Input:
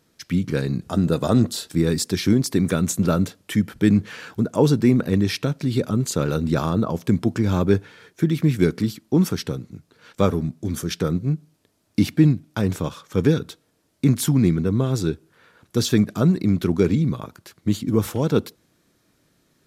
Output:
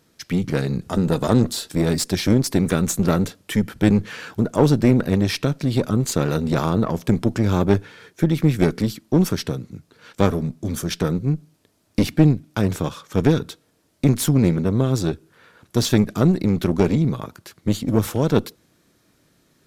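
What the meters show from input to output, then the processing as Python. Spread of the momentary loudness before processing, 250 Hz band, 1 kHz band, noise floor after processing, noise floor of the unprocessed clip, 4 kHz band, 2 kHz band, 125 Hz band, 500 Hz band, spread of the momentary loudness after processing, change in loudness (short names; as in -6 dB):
9 LU, +0.5 dB, +3.0 dB, -63 dBFS, -66 dBFS, +1.5 dB, +2.0 dB, +1.0 dB, +1.5 dB, 9 LU, +1.0 dB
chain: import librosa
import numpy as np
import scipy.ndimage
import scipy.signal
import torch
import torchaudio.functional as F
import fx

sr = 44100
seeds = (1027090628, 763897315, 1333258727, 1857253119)

y = fx.diode_clip(x, sr, knee_db=-21.0)
y = y * 10.0 ** (3.0 / 20.0)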